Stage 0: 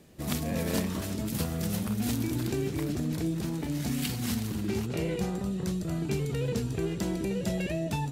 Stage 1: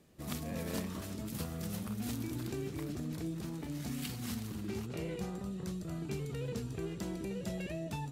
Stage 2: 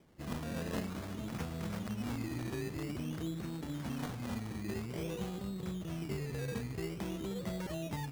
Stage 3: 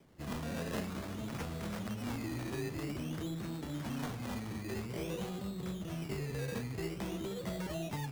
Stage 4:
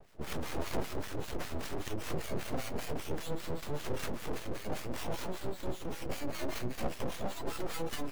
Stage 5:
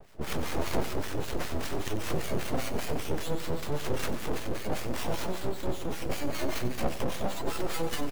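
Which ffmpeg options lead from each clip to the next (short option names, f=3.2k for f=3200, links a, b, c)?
-af "equalizer=f=1.2k:w=4.5:g=3.5,volume=-8.5dB"
-af "acrusher=samples=16:mix=1:aa=0.000001:lfo=1:lforange=9.6:lforate=0.5"
-filter_complex "[0:a]acrossover=split=390|970|5700[a][b][c][d];[a]asoftclip=type=tanh:threshold=-36dB[e];[e][b][c][d]amix=inputs=4:normalize=0,flanger=delay=7.2:depth=8.5:regen=-54:speed=1.5:shape=sinusoidal,volume=5.5dB"
-filter_complex "[0:a]acrossover=split=620[a][b];[a]aeval=exprs='val(0)*(1-1/2+1/2*cos(2*PI*5.1*n/s))':c=same[c];[b]aeval=exprs='val(0)*(1-1/2-1/2*cos(2*PI*5.1*n/s))':c=same[d];[c][d]amix=inputs=2:normalize=0,aeval=exprs='abs(val(0))':c=same,volume=9.5dB"
-af "aecho=1:1:93:0.2,volume=5.5dB"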